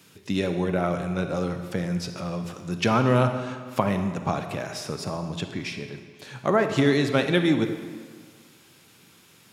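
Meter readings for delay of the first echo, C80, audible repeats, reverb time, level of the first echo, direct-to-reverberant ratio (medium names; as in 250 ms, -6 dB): no echo, 9.0 dB, no echo, 1.8 s, no echo, 7.0 dB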